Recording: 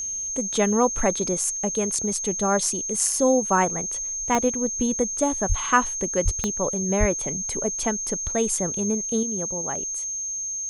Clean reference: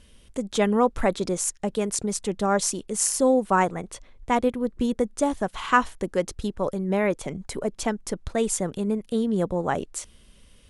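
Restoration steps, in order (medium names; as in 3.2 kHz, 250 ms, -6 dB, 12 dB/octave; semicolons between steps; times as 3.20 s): de-click; band-stop 6.4 kHz, Q 30; de-plosive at 5.48/6.24/6.99 s; trim 0 dB, from 9.23 s +7.5 dB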